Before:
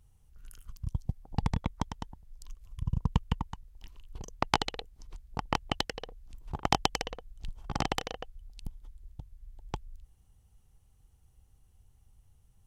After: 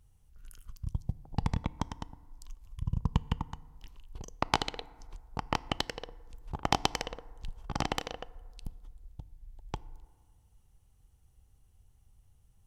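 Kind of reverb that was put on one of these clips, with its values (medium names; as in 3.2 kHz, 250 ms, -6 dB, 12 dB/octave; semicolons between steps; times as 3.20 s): FDN reverb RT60 1.8 s, low-frequency decay 0.8×, high-frequency decay 0.35×, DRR 18.5 dB; trim -1 dB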